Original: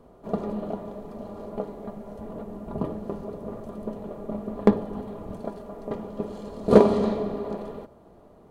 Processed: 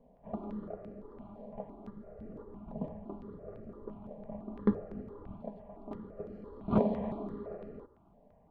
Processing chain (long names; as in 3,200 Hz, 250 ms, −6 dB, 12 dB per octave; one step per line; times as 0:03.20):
high-frequency loss of the air 470 metres
step-sequenced phaser 5.9 Hz 350–3,500 Hz
level −6.5 dB